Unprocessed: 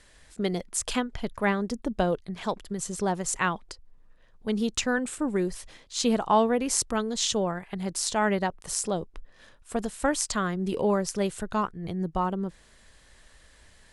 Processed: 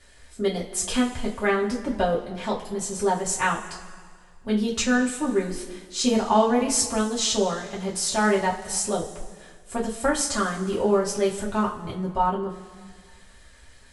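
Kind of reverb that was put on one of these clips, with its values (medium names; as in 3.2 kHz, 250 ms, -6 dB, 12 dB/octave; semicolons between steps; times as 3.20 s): two-slope reverb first 0.24 s, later 1.8 s, from -18 dB, DRR -6 dB; trim -3.5 dB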